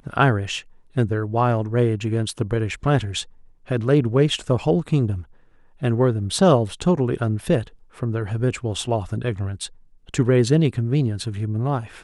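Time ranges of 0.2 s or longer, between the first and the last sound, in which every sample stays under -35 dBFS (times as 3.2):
0.61–0.96
3.23–3.68
5.22–5.82
7.68–7.97
9.67–10.09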